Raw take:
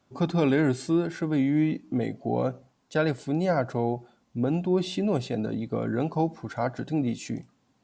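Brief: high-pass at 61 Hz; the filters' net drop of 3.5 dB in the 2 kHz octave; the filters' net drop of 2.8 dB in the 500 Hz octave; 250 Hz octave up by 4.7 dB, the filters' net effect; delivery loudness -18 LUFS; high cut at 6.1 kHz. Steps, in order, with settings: high-pass 61 Hz; low-pass 6.1 kHz; peaking EQ 250 Hz +8.5 dB; peaking EQ 500 Hz -7.5 dB; peaking EQ 2 kHz -4.5 dB; trim +6.5 dB

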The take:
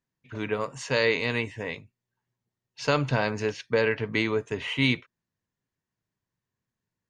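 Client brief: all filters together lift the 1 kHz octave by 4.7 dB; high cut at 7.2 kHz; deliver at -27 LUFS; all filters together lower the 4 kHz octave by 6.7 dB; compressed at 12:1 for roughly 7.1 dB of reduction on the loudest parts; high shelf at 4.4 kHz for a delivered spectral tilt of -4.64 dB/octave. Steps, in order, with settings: low-pass 7.2 kHz; peaking EQ 1 kHz +6.5 dB; peaking EQ 4 kHz -5.5 dB; treble shelf 4.4 kHz -7.5 dB; compression 12:1, threshold -24 dBFS; trim +4.5 dB

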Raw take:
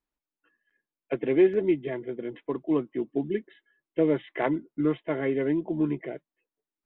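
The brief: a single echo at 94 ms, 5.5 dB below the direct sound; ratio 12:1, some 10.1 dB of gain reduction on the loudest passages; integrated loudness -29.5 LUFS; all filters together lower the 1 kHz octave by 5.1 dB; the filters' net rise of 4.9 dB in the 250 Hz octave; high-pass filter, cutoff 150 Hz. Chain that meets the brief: high-pass 150 Hz; peaking EQ 250 Hz +8 dB; peaking EQ 1 kHz -8 dB; compression 12:1, threshold -22 dBFS; delay 94 ms -5.5 dB; trim -1 dB

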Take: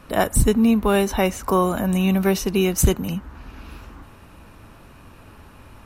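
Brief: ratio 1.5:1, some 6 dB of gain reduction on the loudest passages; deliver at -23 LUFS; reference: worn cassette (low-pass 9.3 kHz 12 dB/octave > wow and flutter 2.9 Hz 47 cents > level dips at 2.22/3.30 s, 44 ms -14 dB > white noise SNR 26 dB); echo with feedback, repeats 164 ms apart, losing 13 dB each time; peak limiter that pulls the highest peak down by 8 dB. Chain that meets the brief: compression 1.5:1, threshold -28 dBFS; peak limiter -18.5 dBFS; low-pass 9.3 kHz 12 dB/octave; feedback delay 164 ms, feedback 22%, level -13 dB; wow and flutter 2.9 Hz 47 cents; level dips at 2.22/3.30 s, 44 ms -14 dB; white noise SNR 26 dB; trim +4.5 dB

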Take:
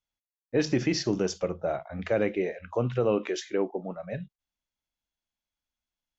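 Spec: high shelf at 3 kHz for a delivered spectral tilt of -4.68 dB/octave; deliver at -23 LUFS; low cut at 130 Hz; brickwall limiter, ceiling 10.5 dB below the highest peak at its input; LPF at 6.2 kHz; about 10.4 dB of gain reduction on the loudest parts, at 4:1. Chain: high-pass 130 Hz; low-pass 6.2 kHz; treble shelf 3 kHz +6 dB; compression 4:1, threshold -33 dBFS; trim +19 dB; peak limiter -12.5 dBFS

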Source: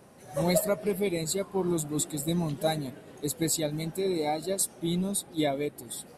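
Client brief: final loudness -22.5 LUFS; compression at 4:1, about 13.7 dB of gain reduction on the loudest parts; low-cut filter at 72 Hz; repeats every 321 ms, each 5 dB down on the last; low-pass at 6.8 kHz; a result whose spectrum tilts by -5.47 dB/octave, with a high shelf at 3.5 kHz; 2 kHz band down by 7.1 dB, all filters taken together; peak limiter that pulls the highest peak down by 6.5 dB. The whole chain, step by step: high-pass 72 Hz; low-pass 6.8 kHz; peaking EQ 2 kHz -7 dB; treble shelf 3.5 kHz -4.5 dB; compression 4:1, threshold -39 dBFS; peak limiter -33.5 dBFS; feedback delay 321 ms, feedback 56%, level -5 dB; trim +19.5 dB

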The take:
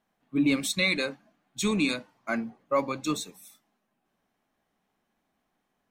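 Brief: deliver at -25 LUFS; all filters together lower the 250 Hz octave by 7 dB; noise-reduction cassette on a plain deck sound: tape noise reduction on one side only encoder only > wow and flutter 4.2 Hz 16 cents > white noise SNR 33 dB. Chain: peaking EQ 250 Hz -8.5 dB; tape noise reduction on one side only encoder only; wow and flutter 4.2 Hz 16 cents; white noise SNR 33 dB; trim +5.5 dB

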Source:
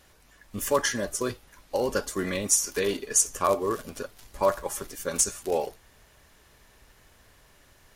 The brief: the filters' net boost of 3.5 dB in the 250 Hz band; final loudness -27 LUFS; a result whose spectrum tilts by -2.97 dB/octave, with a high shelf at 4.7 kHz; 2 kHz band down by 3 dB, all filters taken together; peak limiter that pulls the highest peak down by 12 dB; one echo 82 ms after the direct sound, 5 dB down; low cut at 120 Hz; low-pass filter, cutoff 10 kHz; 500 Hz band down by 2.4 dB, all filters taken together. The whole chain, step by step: high-pass 120 Hz; low-pass 10 kHz; peaking EQ 250 Hz +6.5 dB; peaking EQ 500 Hz -4.5 dB; peaking EQ 2 kHz -4.5 dB; treble shelf 4.7 kHz +5.5 dB; peak limiter -17 dBFS; delay 82 ms -5 dB; trim +2 dB

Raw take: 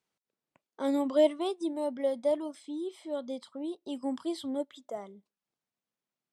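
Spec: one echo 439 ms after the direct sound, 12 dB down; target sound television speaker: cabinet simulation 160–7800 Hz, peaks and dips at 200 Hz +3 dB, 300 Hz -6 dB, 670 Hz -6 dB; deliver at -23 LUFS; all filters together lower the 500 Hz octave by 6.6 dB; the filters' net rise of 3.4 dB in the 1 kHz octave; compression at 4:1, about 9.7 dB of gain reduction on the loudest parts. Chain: peaking EQ 500 Hz -7.5 dB; peaking EQ 1 kHz +8.5 dB; compression 4:1, threshold -32 dBFS; cabinet simulation 160–7800 Hz, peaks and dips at 200 Hz +3 dB, 300 Hz -6 dB, 670 Hz -6 dB; delay 439 ms -12 dB; trim +18 dB

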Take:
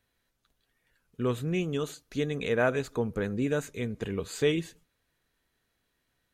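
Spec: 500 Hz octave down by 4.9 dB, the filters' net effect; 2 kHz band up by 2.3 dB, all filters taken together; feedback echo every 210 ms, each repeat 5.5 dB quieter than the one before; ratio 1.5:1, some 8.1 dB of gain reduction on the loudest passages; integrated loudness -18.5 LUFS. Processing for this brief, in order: peaking EQ 500 Hz -6 dB; peaking EQ 2 kHz +3.5 dB; compression 1.5:1, threshold -45 dBFS; feedback delay 210 ms, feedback 53%, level -5.5 dB; trim +19.5 dB

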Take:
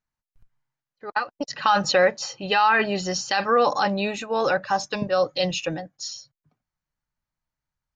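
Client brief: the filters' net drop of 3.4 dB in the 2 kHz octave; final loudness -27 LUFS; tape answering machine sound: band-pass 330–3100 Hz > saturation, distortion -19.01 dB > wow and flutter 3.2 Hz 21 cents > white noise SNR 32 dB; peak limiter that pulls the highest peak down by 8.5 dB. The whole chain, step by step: peaking EQ 2 kHz -4 dB; peak limiter -17 dBFS; band-pass 330–3100 Hz; saturation -19.5 dBFS; wow and flutter 3.2 Hz 21 cents; white noise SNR 32 dB; trim +3.5 dB

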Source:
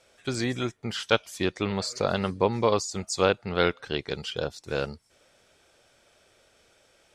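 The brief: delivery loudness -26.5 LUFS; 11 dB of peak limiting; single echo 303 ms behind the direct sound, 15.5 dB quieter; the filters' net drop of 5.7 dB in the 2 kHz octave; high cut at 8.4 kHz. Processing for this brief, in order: low-pass 8.4 kHz; peaking EQ 2 kHz -8.5 dB; peak limiter -18 dBFS; delay 303 ms -15.5 dB; trim +6 dB

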